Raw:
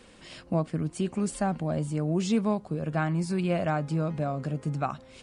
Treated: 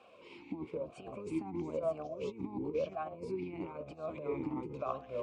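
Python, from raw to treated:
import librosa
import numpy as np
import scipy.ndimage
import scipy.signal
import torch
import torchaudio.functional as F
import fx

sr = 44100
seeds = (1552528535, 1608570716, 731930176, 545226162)

y = fx.octave_divider(x, sr, octaves=1, level_db=-4.0)
y = fx.echo_pitch(y, sr, ms=122, semitones=-3, count=2, db_per_echo=-6.0)
y = fx.over_compress(y, sr, threshold_db=-28.0, ratio=-0.5)
y = fx.vowel_sweep(y, sr, vowels='a-u', hz=1.0)
y = y * librosa.db_to_amplitude(4.5)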